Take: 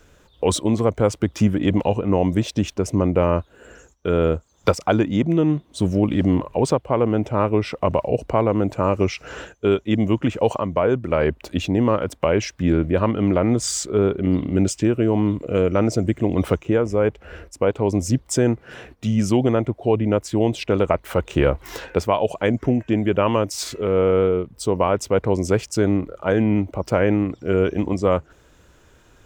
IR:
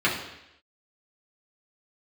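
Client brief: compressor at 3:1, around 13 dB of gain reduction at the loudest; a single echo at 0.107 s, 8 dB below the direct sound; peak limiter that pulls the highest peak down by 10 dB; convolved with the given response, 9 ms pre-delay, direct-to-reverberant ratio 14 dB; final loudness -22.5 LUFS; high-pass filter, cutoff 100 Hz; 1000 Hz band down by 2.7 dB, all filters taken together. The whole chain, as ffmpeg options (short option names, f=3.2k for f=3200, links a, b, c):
-filter_complex "[0:a]highpass=100,equalizer=f=1k:t=o:g=-3.5,acompressor=threshold=-32dB:ratio=3,alimiter=limit=-22.5dB:level=0:latency=1,aecho=1:1:107:0.398,asplit=2[a][b];[1:a]atrim=start_sample=2205,adelay=9[c];[b][c]afir=irnorm=-1:irlink=0,volume=-29.5dB[d];[a][d]amix=inputs=2:normalize=0,volume=11.5dB"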